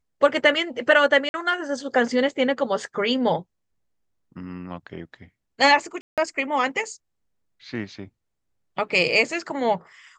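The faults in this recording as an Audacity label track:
1.290000	1.340000	dropout 51 ms
6.010000	6.180000	dropout 167 ms

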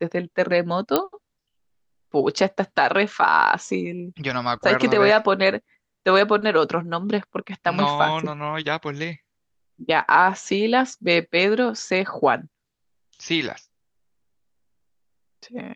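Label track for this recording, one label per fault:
0.960000	0.960000	pop -4 dBFS

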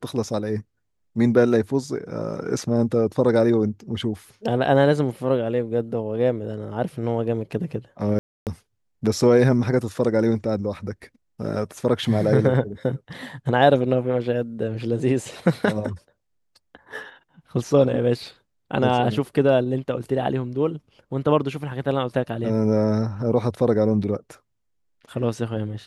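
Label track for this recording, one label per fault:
8.190000	8.470000	dropout 278 ms

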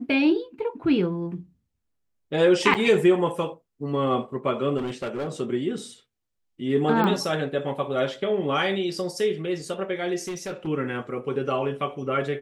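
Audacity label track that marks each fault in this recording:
2.740000	2.750000	dropout 7.4 ms
4.770000	5.290000	clipped -25 dBFS
7.040000	7.040000	pop -14 dBFS
10.280000	10.680000	clipped -27.5 dBFS

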